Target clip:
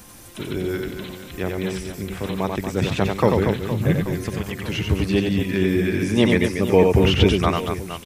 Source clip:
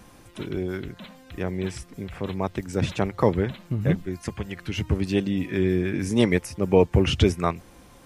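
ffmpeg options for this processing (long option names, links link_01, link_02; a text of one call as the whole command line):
ffmpeg -i in.wav -filter_complex "[0:a]acrossover=split=3900[link_01][link_02];[link_02]acompressor=threshold=-53dB:ratio=4:attack=1:release=60[link_03];[link_01][link_03]amix=inputs=2:normalize=0,crystalizer=i=2.5:c=0,aecho=1:1:90|234|464.4|833|1423:0.631|0.398|0.251|0.158|0.1,volume=2dB" out.wav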